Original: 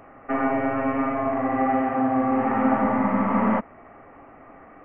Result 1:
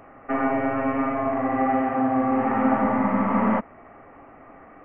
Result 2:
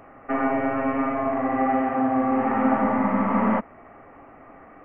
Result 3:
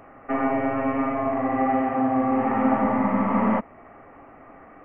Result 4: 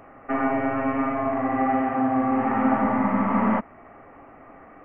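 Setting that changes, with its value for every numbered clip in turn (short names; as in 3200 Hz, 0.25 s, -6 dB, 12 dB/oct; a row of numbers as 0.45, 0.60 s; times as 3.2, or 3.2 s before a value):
dynamic EQ, frequency: 8600, 120, 1500, 500 Hz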